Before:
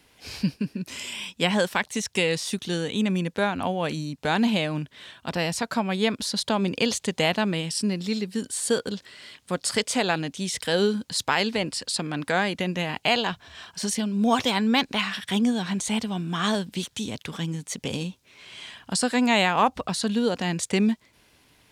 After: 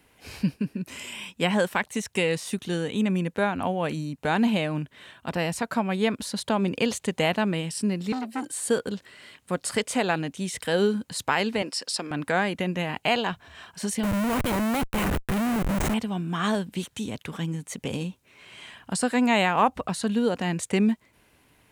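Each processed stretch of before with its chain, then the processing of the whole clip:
8.12–8.52 s: comb 3.9 ms, depth 56% + frequency shift +39 Hz + transformer saturation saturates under 1.2 kHz
11.62–12.11 s: high-pass 310 Hz + peaking EQ 5.3 kHz +13.5 dB 0.28 oct
14.03–15.94 s: high-pass 56 Hz + band-stop 410 Hz, Q 6.9 + Schmitt trigger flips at -26 dBFS
whole clip: peaking EQ 4.9 kHz -8.5 dB 1.1 oct; band-stop 3.4 kHz, Q 23

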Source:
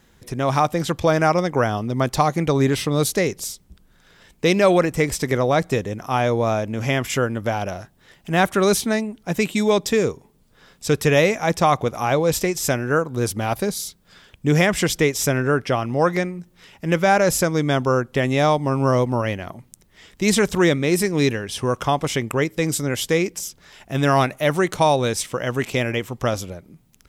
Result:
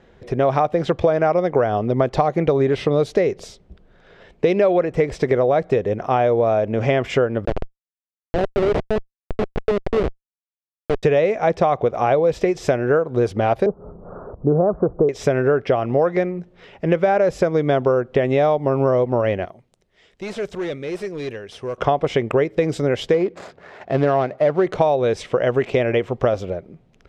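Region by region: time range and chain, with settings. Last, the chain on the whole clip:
7.45–11.03 s: high-pass 270 Hz 24 dB/octave + Schmitt trigger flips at -15.5 dBFS
13.66–15.09 s: steep low-pass 1.3 kHz 72 dB/octave + upward compressor, threshold -28 dBFS
19.45–21.78 s: pre-emphasis filter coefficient 0.8 + overload inside the chain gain 29.5 dB
23.14–24.67 s: median filter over 15 samples + high-pass 85 Hz + tape noise reduction on one side only encoder only
whole clip: low-pass 2.9 kHz 12 dB/octave; high-order bell 520 Hz +8 dB 1.2 oct; compression, threshold -17 dBFS; trim +3 dB

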